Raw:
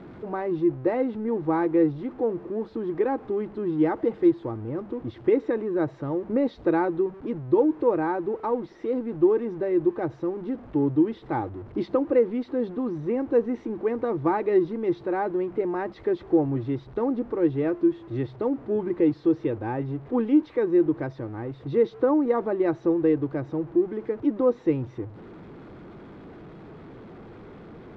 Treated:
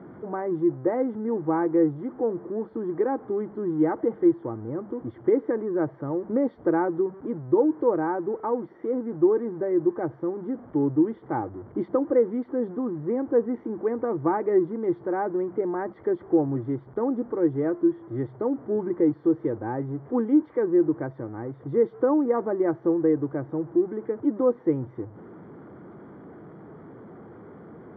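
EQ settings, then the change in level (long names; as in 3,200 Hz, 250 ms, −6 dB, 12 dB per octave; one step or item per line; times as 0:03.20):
Savitzky-Golay smoothing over 41 samples
high-pass filter 110 Hz
high-frequency loss of the air 94 metres
0.0 dB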